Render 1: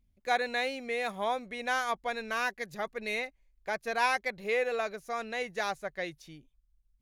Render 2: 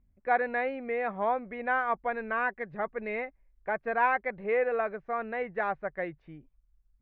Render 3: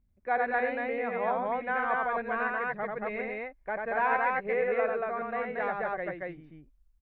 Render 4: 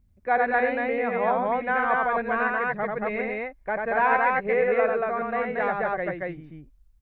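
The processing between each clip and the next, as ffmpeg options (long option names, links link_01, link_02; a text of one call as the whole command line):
ffmpeg -i in.wav -af "lowpass=frequency=1900:width=0.5412,lowpass=frequency=1900:width=1.3066,volume=3dB" out.wav
ffmpeg -i in.wav -af "aecho=1:1:90.38|230.3:0.708|0.891,volume=-3dB" out.wav
ffmpeg -i in.wav -af "equalizer=frequency=89:width_type=o:width=2.1:gain=5,volume=5.5dB" out.wav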